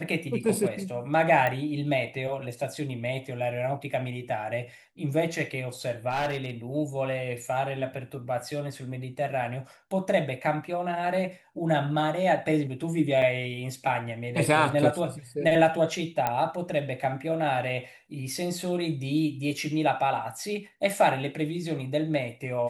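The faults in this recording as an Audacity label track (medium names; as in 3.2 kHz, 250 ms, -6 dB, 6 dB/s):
1.470000	1.470000	pop -15 dBFS
6.090000	6.510000	clipped -24 dBFS
13.220000	13.220000	dropout 3.2 ms
16.270000	16.270000	pop -12 dBFS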